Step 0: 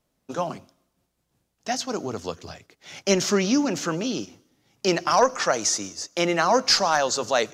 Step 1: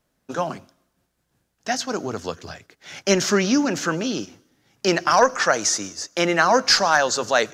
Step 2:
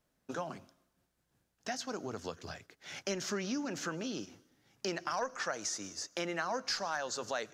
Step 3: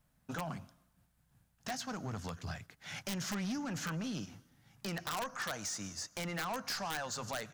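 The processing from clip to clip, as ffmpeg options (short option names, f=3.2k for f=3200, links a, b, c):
-af "equalizer=f=1.6k:t=o:w=0.47:g=6.5,volume=2dB"
-af "acompressor=threshold=-31dB:ratio=2.5,volume=-7dB"
-af "firequalizer=gain_entry='entry(150,0);entry(360,-17);entry(770,-7);entry(5800,-11);entry(9100,-5)':delay=0.05:min_phase=1,aeval=exprs='(mod(50.1*val(0)+1,2)-1)/50.1':c=same,aeval=exprs='0.0211*(cos(1*acos(clip(val(0)/0.0211,-1,1)))-cos(1*PI/2))+0.00376*(cos(5*acos(clip(val(0)/0.0211,-1,1)))-cos(5*PI/2))':c=same,volume=4.5dB"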